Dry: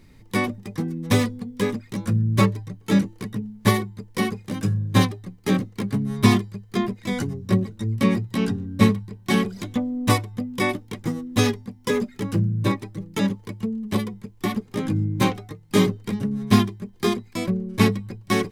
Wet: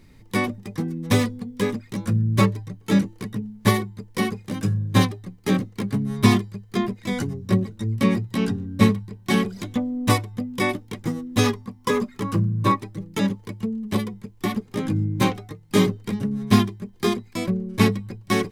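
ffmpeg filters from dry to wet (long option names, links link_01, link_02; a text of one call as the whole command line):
ffmpeg -i in.wav -filter_complex "[0:a]asettb=1/sr,asplit=3[link_01][link_02][link_03];[link_01]atrim=end=11.444[link_04];[link_02]atrim=start=11.44:end=12.81,asetpts=PTS-STARTPTS,afade=type=in:duration=0.004:curve=qsin,afade=type=out:start_time=1.366:duration=0.004:curve=qsin,equalizer=frequency=1100:width=4.4:gain=12[link_05];[link_03]atrim=start=12.806[link_06];[link_04][link_05]acrossfade=duration=0.004:curve1=hsin:curve2=qsin[link_07];[link_07][link_06]acrossfade=duration=0.004:curve1=qsin:curve2=hsin" out.wav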